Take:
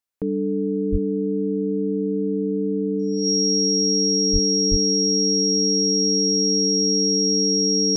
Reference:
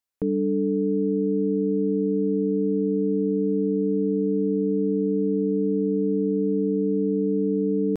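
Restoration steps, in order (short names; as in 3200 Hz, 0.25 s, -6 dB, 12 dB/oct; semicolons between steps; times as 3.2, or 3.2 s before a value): notch 5600 Hz, Q 30; de-plosive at 0.91/4.32/4.7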